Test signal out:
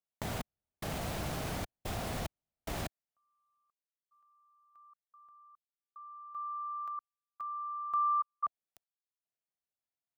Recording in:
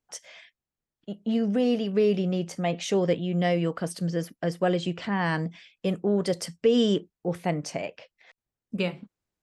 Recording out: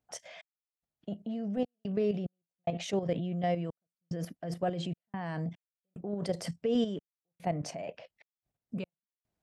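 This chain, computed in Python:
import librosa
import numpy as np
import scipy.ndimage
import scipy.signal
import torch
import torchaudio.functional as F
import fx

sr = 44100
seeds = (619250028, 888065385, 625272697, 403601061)

p1 = fx.peak_eq(x, sr, hz=680.0, db=9.0, octaves=0.56)
p2 = fx.step_gate(p1, sr, bpm=73, pattern='xx..xxxx.xx..xxx', floor_db=-60.0, edge_ms=4.5)
p3 = fx.over_compress(p2, sr, threshold_db=-34.0, ratio=-1.0)
p4 = p2 + (p3 * librosa.db_to_amplitude(-2.0))
p5 = fx.highpass(p4, sr, hz=78.0, slope=6)
p6 = fx.level_steps(p5, sr, step_db=10)
p7 = fx.bass_treble(p6, sr, bass_db=8, treble_db=-3)
y = p7 * librosa.db_to_amplitude(-9.0)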